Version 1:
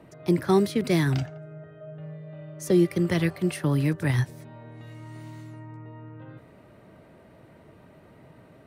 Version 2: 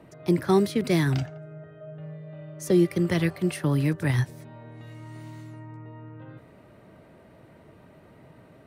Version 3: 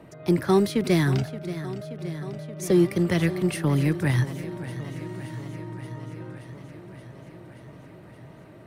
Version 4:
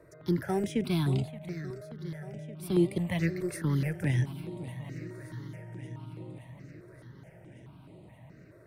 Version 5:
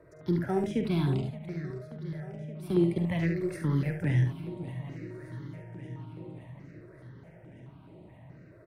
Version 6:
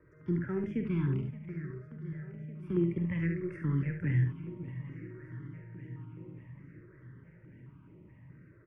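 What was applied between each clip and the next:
nothing audible
in parallel at -8 dB: soft clip -28.5 dBFS, distortion -5 dB; on the sum: warbling echo 0.576 s, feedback 73%, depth 82 cents, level -14 dB
notch 1200 Hz, Q 12; step phaser 4.7 Hz 820–5700 Hz; gain -4.5 dB
high shelf 4400 Hz -12 dB; on a send: early reflections 47 ms -9.5 dB, 71 ms -7.5 dB
LPF 2900 Hz 12 dB/oct; fixed phaser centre 1700 Hz, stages 4; gain -2 dB

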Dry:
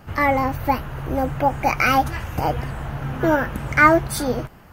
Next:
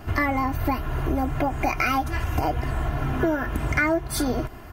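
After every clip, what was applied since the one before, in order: low shelf 440 Hz +3 dB; comb 2.9 ms, depth 61%; compressor 5:1, threshold -24 dBFS, peak gain reduction 15.5 dB; gain +3 dB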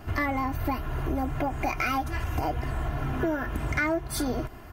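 soft clip -13 dBFS, distortion -24 dB; gain -3.5 dB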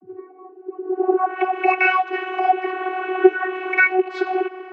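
rattling part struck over -35 dBFS, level -37 dBFS; low-pass sweep 210 Hz -> 2400 Hz, 0.7–1.41; vocoder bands 32, saw 372 Hz; gain +9 dB

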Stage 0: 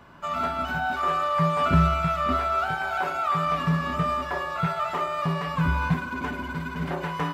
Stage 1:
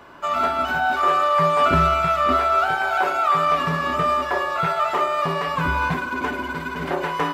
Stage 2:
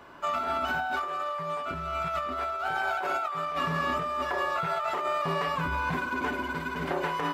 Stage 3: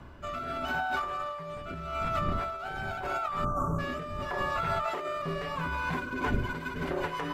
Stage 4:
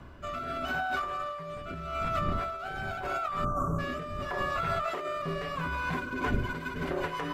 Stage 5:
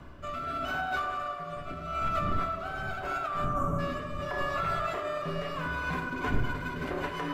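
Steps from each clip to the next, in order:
resonant low shelf 250 Hz -7.5 dB, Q 1.5; gain +6 dB
negative-ratio compressor -23 dBFS, ratio -1; gain -7 dB
wind noise 140 Hz -39 dBFS; spectral delete 3.44–3.79, 1600–5700 Hz; rotary speaker horn 0.8 Hz, later 6 Hz, at 5.72
notch 880 Hz, Q 16
reverse; upward compressor, threshold -40 dBFS; reverse; tape echo 96 ms, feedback 88%, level -11.5 dB, low-pass 3800 Hz; shoebox room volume 130 m³, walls mixed, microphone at 0.42 m; gain -1.5 dB

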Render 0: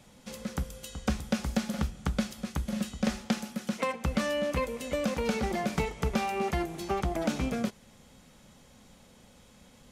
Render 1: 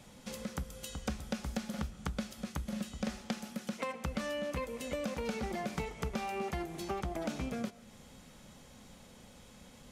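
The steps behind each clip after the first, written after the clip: compressor 2:1, threshold -41 dBFS, peak gain reduction 10.5 dB; on a send at -19 dB: reverb, pre-delay 95 ms; on the sum: gain +1 dB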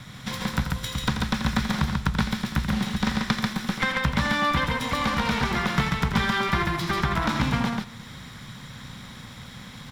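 minimum comb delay 0.54 ms; graphic EQ 125/500/1000/2000/4000/8000 Hz +12/-5/+11/+5/+8/-3 dB; on a send: loudspeakers at several distances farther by 29 m -9 dB, 48 m -3 dB; on the sum: gain +7.5 dB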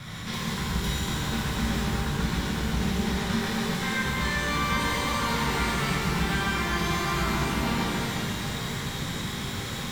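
reverse; compressor 12:1, threshold -32 dBFS, peak gain reduction 15.5 dB; reverse; shimmer reverb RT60 3.2 s, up +12 st, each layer -8 dB, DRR -8 dB

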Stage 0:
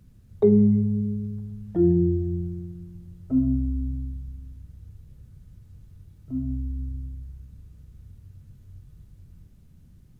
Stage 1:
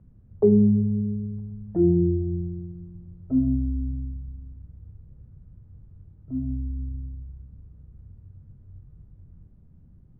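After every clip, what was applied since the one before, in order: LPF 1000 Hz 12 dB/oct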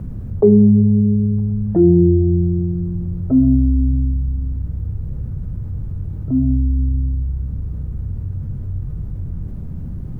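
fast leveller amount 50%; gain +6 dB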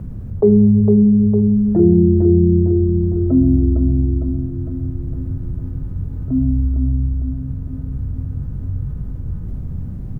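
feedback echo 0.456 s, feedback 59%, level -5 dB; gain -1 dB

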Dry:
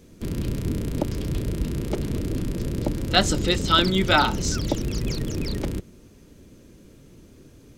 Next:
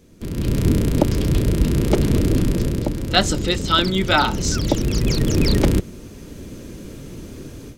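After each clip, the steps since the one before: AGC gain up to 15 dB; gain -1 dB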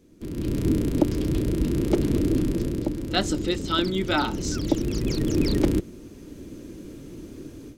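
small resonant body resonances 310 Hz, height 9 dB, ringing for 25 ms; gain -8.5 dB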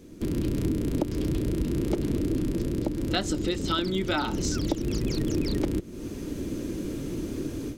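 compressor 5:1, threshold -33 dBFS, peak gain reduction 17 dB; gain +8 dB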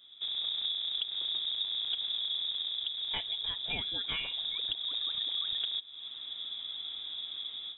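inverted band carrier 3700 Hz; gain -8.5 dB

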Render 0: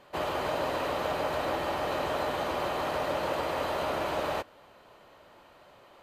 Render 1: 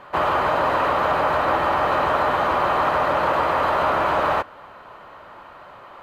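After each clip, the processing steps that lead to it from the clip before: tone controls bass +4 dB, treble -6 dB; in parallel at 0 dB: limiter -26.5 dBFS, peak gain reduction 8.5 dB; on the sum: bell 1200 Hz +11.5 dB 1.5 oct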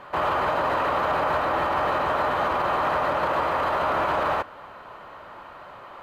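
limiter -15.5 dBFS, peak gain reduction 7 dB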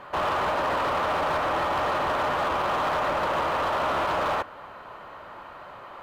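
hard clip -22 dBFS, distortion -13 dB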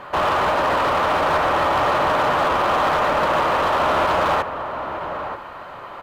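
outdoor echo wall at 160 m, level -8 dB; gain +6.5 dB

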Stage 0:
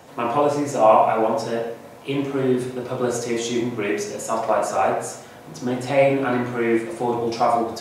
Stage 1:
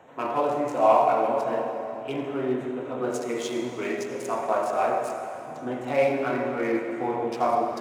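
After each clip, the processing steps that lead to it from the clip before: Wiener smoothing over 9 samples; low shelf 220 Hz -9.5 dB; reverb RT60 3.4 s, pre-delay 71 ms, DRR 5.5 dB; gain -4 dB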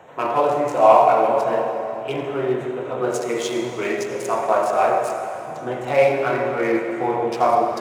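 bell 260 Hz -13 dB 0.23 oct; gain +6.5 dB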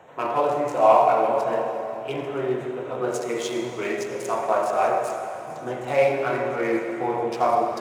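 thin delay 0.841 s, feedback 62%, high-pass 5000 Hz, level -14 dB; gain -3.5 dB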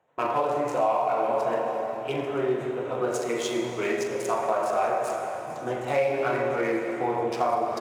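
gate with hold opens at -31 dBFS; compressor 6:1, threshold -21 dBFS, peak gain reduction 10 dB; doubler 42 ms -12 dB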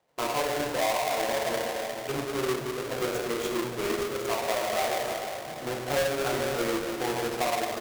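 half-waves squared off; gain -6.5 dB

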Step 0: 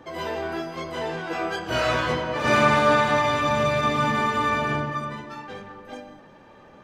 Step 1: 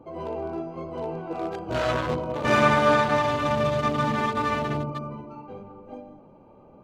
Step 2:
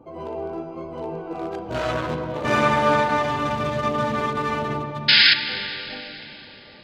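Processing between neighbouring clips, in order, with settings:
Wiener smoothing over 25 samples
painted sound noise, 5.08–5.34, 1400–5200 Hz -14 dBFS; reverb RT60 3.6 s, pre-delay 7 ms, DRR 7.5 dB

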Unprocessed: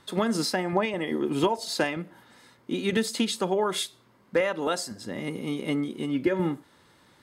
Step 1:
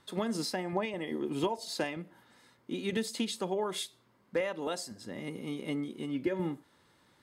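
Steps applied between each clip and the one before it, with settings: dynamic EQ 1400 Hz, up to -5 dB, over -47 dBFS, Q 2.8; gain -7 dB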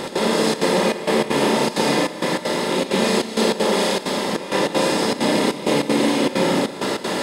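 per-bin compression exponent 0.2; Schroeder reverb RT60 2.4 s, combs from 28 ms, DRR -5.5 dB; step gate "x.xxxxx.xxxx..x" 196 bpm -12 dB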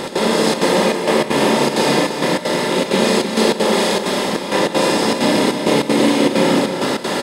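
echo 0.308 s -8.5 dB; gain +3 dB

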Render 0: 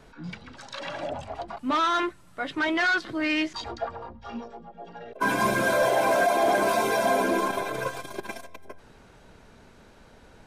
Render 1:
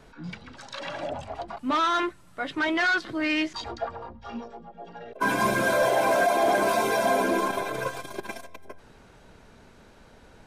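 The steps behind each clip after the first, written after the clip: nothing audible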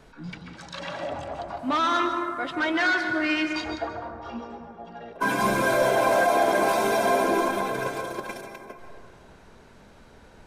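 plate-style reverb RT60 2.2 s, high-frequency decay 0.3×, pre-delay 0.12 s, DRR 5 dB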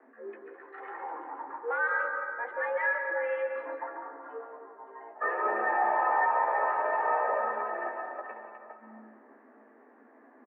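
frequency shift +220 Hz; elliptic low-pass 1900 Hz, stop band 80 dB; doubler 15 ms -6.5 dB; gain -6.5 dB

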